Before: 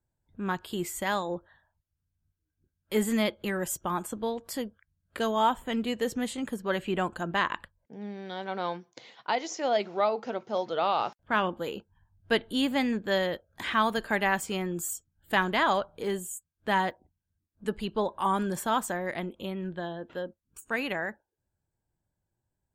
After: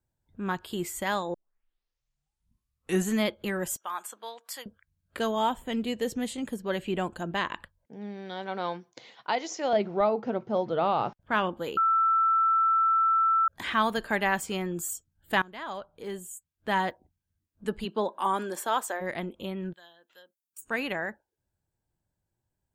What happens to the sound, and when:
1.34 tape start 1.86 s
3.76–4.66 HPF 990 Hz
5.35–7.58 bell 1300 Hz -5 dB 1.1 oct
9.73–11.2 RIAA curve playback
11.77–13.48 bleep 1330 Hz -20 dBFS
15.42–16.89 fade in, from -21.5 dB
17.84–19 HPF 160 Hz -> 390 Hz 24 dB/oct
19.73–20.62 differentiator

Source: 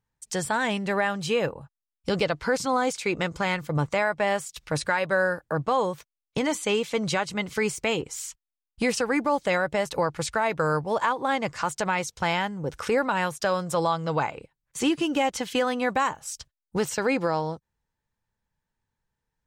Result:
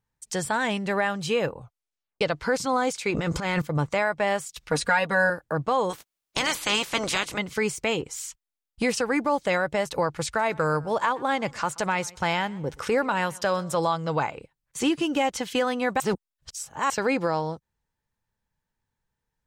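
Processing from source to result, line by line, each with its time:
1.57 tape stop 0.64 s
3.1–3.62 transient shaper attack -10 dB, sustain +12 dB
4.7–5.3 comb 4.2 ms, depth 96%
5.89–7.37 spectral limiter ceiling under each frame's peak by 24 dB
10.26–13.97 warbling echo 0.127 s, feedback 31%, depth 78 cents, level -23 dB
16–16.9 reverse

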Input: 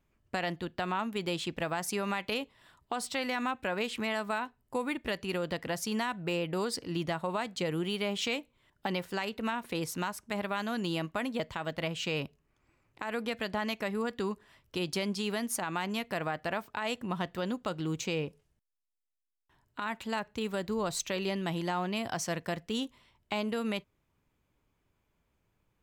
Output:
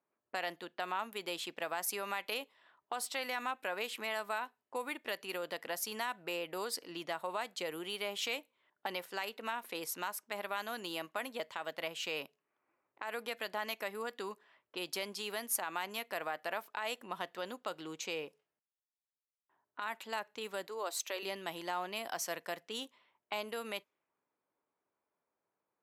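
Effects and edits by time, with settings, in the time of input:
20.67–21.23 Chebyshev high-pass 270 Hz, order 4
whole clip: HPF 460 Hz 12 dB/oct; low-pass opened by the level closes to 1300 Hz, open at -34 dBFS; bell 12000 Hz +13 dB 0.31 oct; gain -3.5 dB

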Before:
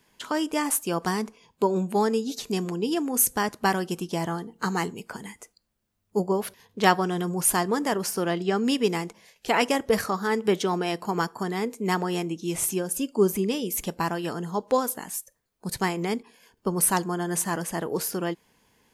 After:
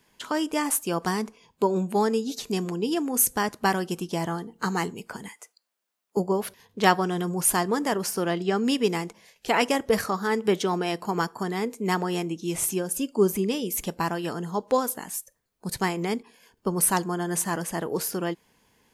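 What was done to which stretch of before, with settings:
5.28–6.17 HPF 620 Hz

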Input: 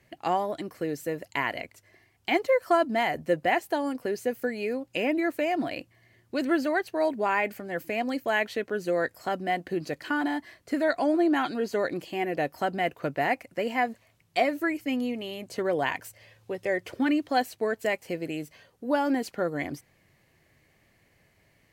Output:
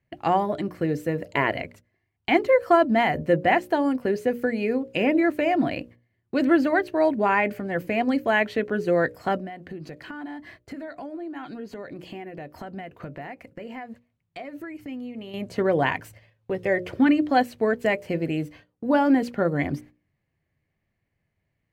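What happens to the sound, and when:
1.26–1.52 spectral gain 320–680 Hz +8 dB
9.37–15.34 compressor 4:1, threshold -42 dBFS
whole clip: gate -51 dBFS, range -20 dB; tone controls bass +8 dB, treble -10 dB; notches 60/120/180/240/300/360/420/480/540/600 Hz; gain +4.5 dB

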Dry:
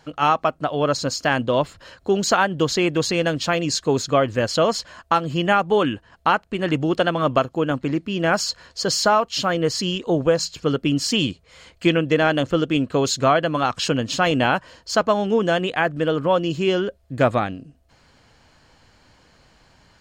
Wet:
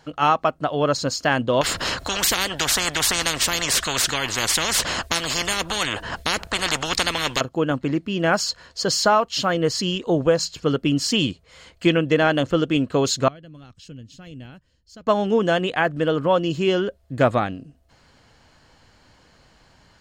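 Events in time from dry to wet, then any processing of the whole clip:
1.61–7.41 spectral compressor 10:1
13.28–15.07 passive tone stack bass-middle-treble 10-0-1
whole clip: notch 2400 Hz, Q 29

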